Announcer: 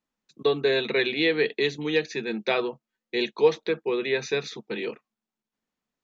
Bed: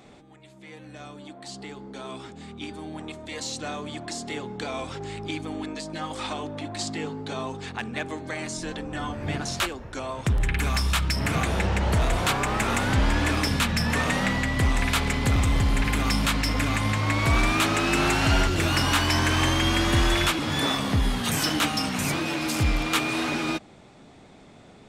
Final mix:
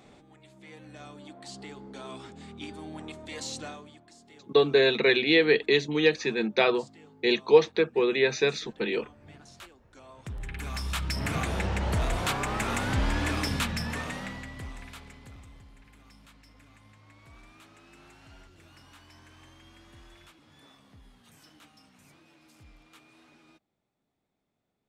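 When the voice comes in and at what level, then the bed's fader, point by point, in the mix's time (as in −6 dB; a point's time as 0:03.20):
4.10 s, +2.0 dB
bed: 0:03.60 −4 dB
0:04.05 −21.5 dB
0:09.77 −21.5 dB
0:11.17 −5 dB
0:13.60 −5 dB
0:15.76 −32 dB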